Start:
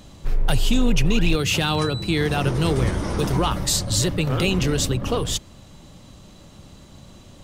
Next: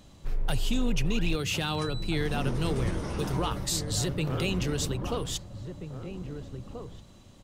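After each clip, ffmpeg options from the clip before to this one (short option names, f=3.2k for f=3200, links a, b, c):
-filter_complex "[0:a]asplit=2[a][b];[b]adelay=1633,volume=-8dB,highshelf=f=4k:g=-36.7[c];[a][c]amix=inputs=2:normalize=0,volume=-8.5dB"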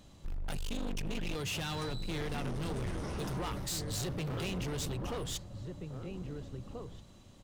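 -af "volume=30dB,asoftclip=hard,volume=-30dB,volume=-3.5dB"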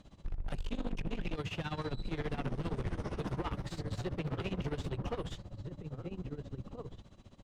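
-filter_complex "[0:a]aemphasis=mode=reproduction:type=50fm,tremolo=f=15:d=0.85,acrossover=split=3200[a][b];[b]acompressor=threshold=-56dB:ratio=4:attack=1:release=60[c];[a][c]amix=inputs=2:normalize=0,volume=3dB"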